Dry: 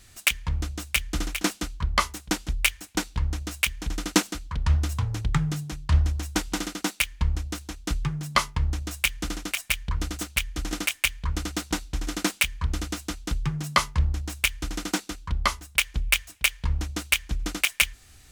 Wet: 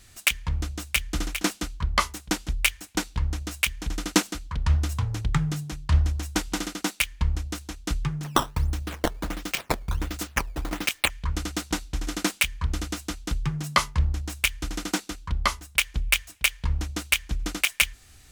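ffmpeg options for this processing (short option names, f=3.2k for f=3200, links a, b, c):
-filter_complex "[0:a]asettb=1/sr,asplit=3[a][b][c];[a]atrim=end=8.244[d];[b]atrim=start=8.24:end=11.1,asetpts=PTS-STARTPTS,afade=t=in:d=0.004:c=qsin,afade=t=out:st=2.856:d=0.004:c=qsin,acrusher=samples=11:mix=1:aa=0.000001:lfo=1:lforange=17.6:lforate=1.4[e];[c]atrim=start=11.096[f];[d][e]acrossfade=d=0.004:c1=hsin:c2=qsin[g];[g][f]acrossfade=d=0.004:c1=qsin:c2=hsin"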